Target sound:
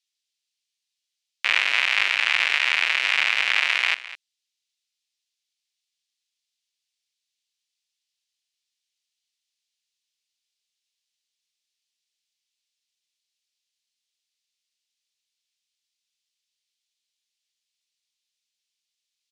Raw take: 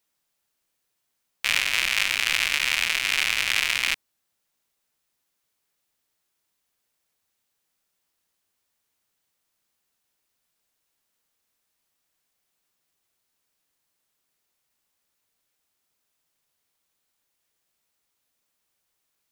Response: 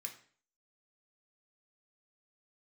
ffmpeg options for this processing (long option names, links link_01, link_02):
-filter_complex "[0:a]acrossover=split=2800[link_01][link_02];[link_01]acrusher=bits=4:mix=0:aa=0.5[link_03];[link_02]alimiter=limit=-18.5dB:level=0:latency=1:release=215[link_04];[link_03][link_04]amix=inputs=2:normalize=0,highpass=460,lowpass=4700,aecho=1:1:209:0.158,volume=5dB"